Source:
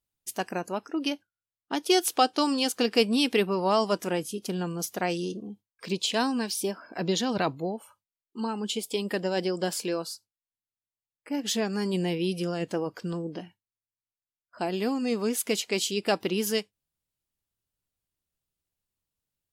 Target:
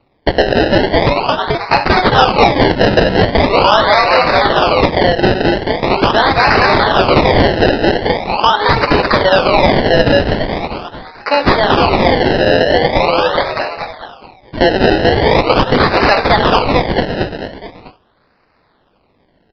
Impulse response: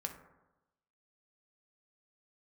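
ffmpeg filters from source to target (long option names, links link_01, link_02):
-filter_complex "[0:a]highpass=frequency=590:width=0.5412,highpass=frequency=590:width=1.3066,asplit=2[link_01][link_02];[link_02]asplit=6[link_03][link_04][link_05][link_06][link_07][link_08];[link_03]adelay=217,afreqshift=51,volume=-4dB[link_09];[link_04]adelay=434,afreqshift=102,volume=-10dB[link_10];[link_05]adelay=651,afreqshift=153,volume=-16dB[link_11];[link_06]adelay=868,afreqshift=204,volume=-22.1dB[link_12];[link_07]adelay=1085,afreqshift=255,volume=-28.1dB[link_13];[link_08]adelay=1302,afreqshift=306,volume=-34.1dB[link_14];[link_09][link_10][link_11][link_12][link_13][link_14]amix=inputs=6:normalize=0[link_15];[link_01][link_15]amix=inputs=2:normalize=0[link_16];[1:a]atrim=start_sample=2205,atrim=end_sample=3969[link_17];[link_16][link_17]afir=irnorm=-1:irlink=0,asplit=2[link_18][link_19];[link_19]acrusher=bits=3:mix=0:aa=0.000001,volume=-10dB[link_20];[link_18][link_20]amix=inputs=2:normalize=0,acompressor=threshold=-41dB:ratio=2.5,acrusher=samples=26:mix=1:aa=0.000001:lfo=1:lforange=26:lforate=0.42,aresample=11025,aresample=44100,apsyclip=34dB,volume=-2dB"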